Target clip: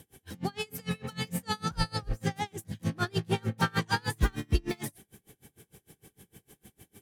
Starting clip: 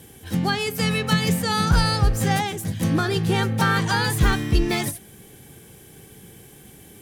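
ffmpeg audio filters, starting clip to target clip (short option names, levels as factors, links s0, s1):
-filter_complex "[0:a]asettb=1/sr,asplit=3[s0][s1][s2];[s0]atrim=end=2.894[s3];[s1]atrim=start=2.89:end=4.04,asetpts=PTS-STARTPTS,afade=t=in:d=0.004:c=qsin,afade=t=out:st=1.146:d=0.004:c=qsin,aeval=exprs='0.376*(cos(1*acos(clip(val(0)/0.376,-1,1)))-cos(1*PI/2))+0.0335*(cos(5*acos(clip(val(0)/0.376,-1,1)))-cos(5*PI/2))':c=same[s4];[s2]atrim=start=4.036[s5];[s3][s4]acrossfade=d=0.004:c1=hsin:c2=qsin[s6];[s6][s5]acrossfade=d=0.004:c1=qsin:c2=hsin,aeval=exprs='val(0)*pow(10,-32*(0.5-0.5*cos(2*PI*6.6*n/s))/20)':c=same,volume=0.596"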